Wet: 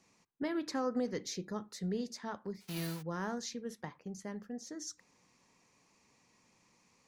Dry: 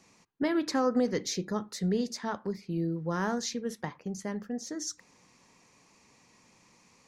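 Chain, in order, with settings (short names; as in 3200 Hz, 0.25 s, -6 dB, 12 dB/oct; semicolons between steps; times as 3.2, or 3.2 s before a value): 2.6–3.01 spectral whitening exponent 0.3; gain -7.5 dB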